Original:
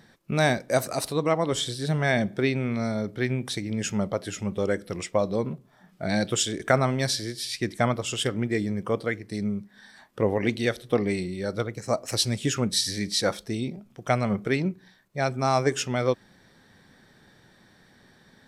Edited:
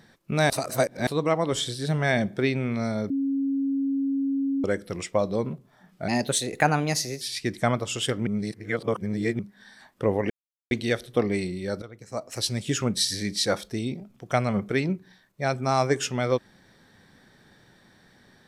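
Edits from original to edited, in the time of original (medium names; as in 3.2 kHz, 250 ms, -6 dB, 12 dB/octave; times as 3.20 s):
0.50–1.07 s: reverse
3.10–4.64 s: bleep 274 Hz -22.5 dBFS
6.08–7.38 s: speed 115%
8.44–9.56 s: reverse
10.47 s: insert silence 0.41 s
11.58–12.55 s: fade in linear, from -16 dB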